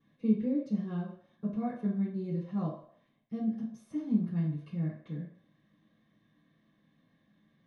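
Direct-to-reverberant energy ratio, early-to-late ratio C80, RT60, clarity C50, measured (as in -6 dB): -10.0 dB, 8.5 dB, 0.60 s, 4.5 dB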